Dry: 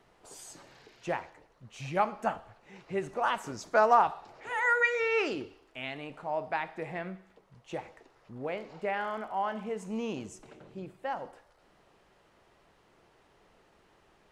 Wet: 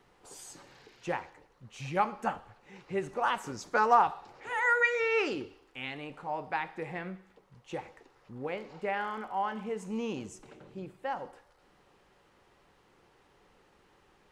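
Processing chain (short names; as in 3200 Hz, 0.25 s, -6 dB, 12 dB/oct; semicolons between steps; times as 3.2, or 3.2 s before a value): Butterworth band-stop 650 Hz, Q 8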